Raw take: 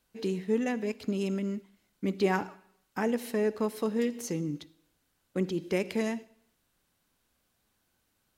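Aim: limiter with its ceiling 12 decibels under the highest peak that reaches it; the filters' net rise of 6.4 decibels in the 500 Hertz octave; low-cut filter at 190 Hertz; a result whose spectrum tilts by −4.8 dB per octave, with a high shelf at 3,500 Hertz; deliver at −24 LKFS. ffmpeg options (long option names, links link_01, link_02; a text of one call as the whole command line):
ffmpeg -i in.wav -af "highpass=190,equalizer=frequency=500:width_type=o:gain=8,highshelf=frequency=3500:gain=7,volume=9dB,alimiter=limit=-13.5dB:level=0:latency=1" out.wav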